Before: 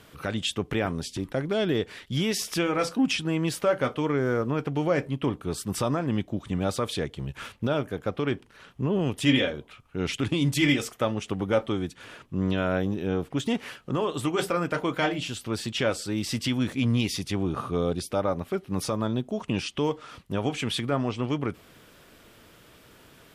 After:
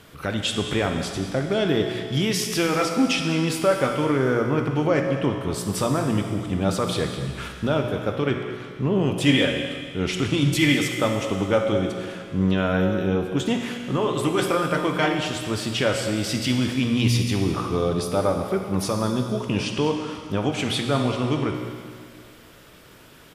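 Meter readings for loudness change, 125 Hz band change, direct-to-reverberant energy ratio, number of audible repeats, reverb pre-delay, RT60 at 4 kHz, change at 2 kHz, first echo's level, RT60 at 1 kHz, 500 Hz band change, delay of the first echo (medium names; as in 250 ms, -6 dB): +4.5 dB, +5.0 dB, 3.0 dB, 1, 16 ms, 2.1 s, +5.0 dB, -15.0 dB, 2.1 s, +4.5 dB, 205 ms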